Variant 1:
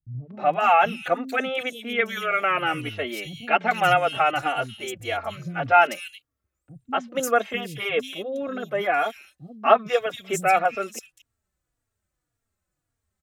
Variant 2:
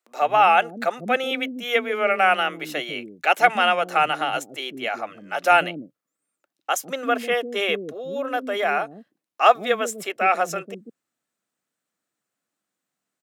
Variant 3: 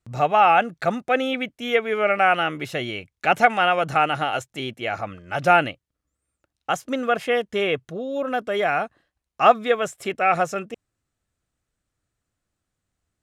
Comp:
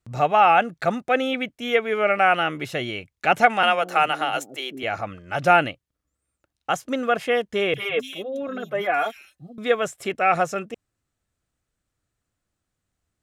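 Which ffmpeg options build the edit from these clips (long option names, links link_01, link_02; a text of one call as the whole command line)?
ffmpeg -i take0.wav -i take1.wav -i take2.wav -filter_complex "[2:a]asplit=3[link_01][link_02][link_03];[link_01]atrim=end=3.632[link_04];[1:a]atrim=start=3.628:end=4.832[link_05];[link_02]atrim=start=4.828:end=7.742[link_06];[0:a]atrim=start=7.738:end=9.582[link_07];[link_03]atrim=start=9.578[link_08];[link_04][link_05]acrossfade=duration=0.004:curve1=hsin:curve2=hsin[link_09];[link_09][link_06]acrossfade=duration=0.004:curve1=hsin:curve2=hsin[link_10];[link_10][link_07]acrossfade=duration=0.004:curve1=hsin:curve2=hsin[link_11];[link_11][link_08]acrossfade=duration=0.004:curve1=hsin:curve2=hsin" out.wav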